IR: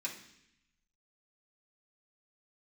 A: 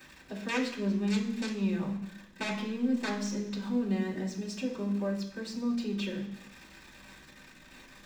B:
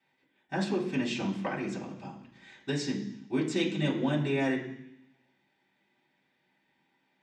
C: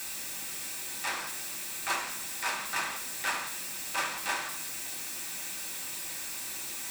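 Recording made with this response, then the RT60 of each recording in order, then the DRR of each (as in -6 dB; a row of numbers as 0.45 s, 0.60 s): B; 0.75 s, 0.75 s, 0.75 s; -12.0 dB, -6.0 dB, -2.0 dB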